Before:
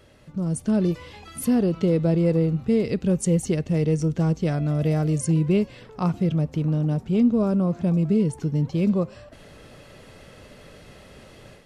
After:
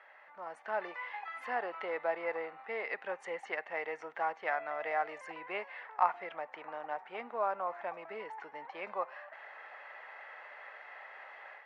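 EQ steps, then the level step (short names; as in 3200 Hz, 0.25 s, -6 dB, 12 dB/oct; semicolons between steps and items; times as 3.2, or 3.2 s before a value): ladder high-pass 730 Hz, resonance 60%; synth low-pass 1900 Hz, resonance Q 4.2; +4.5 dB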